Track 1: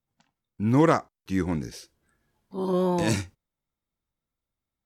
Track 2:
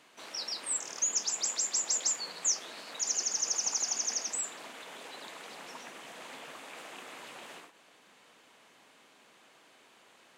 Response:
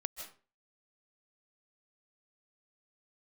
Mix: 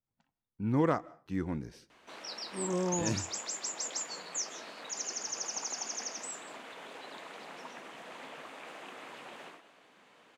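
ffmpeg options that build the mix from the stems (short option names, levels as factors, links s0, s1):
-filter_complex "[0:a]volume=0.355,asplit=2[s0][s1];[s1]volume=0.158[s2];[1:a]adelay=1900,volume=0.708,asplit=2[s3][s4];[s4]volume=0.708[s5];[2:a]atrim=start_sample=2205[s6];[s2][s5]amix=inputs=2:normalize=0[s7];[s7][s6]afir=irnorm=-1:irlink=0[s8];[s0][s3][s8]amix=inputs=3:normalize=0,highshelf=f=4300:g=-11.5"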